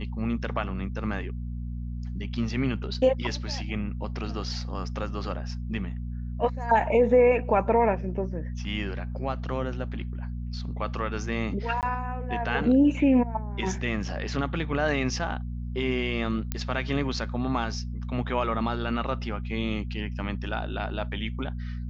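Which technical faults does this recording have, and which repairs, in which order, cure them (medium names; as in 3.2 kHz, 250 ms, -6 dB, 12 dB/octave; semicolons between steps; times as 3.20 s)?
hum 60 Hz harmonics 4 -33 dBFS
11.81–11.83 s: dropout 18 ms
16.52 s: pop -13 dBFS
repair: de-click; de-hum 60 Hz, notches 4; interpolate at 11.81 s, 18 ms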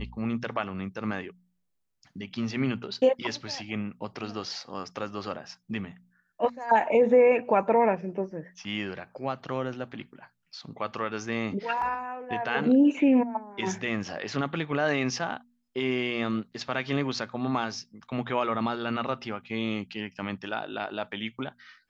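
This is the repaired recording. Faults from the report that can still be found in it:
nothing left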